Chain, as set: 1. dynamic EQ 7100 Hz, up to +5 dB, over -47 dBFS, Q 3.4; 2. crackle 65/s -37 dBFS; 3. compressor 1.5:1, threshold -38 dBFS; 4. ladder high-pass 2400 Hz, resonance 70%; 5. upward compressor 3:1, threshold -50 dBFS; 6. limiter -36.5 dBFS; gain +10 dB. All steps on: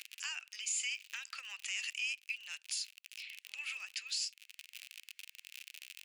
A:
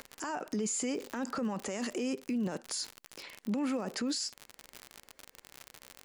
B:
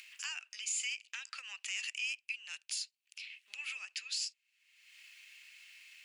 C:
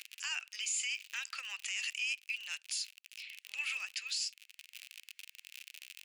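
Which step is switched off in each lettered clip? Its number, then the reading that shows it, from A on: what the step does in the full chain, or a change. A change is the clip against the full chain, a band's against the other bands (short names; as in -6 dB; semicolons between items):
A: 4, 1 kHz band +19.0 dB; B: 2, momentary loudness spread change +4 LU; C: 3, mean gain reduction 4.5 dB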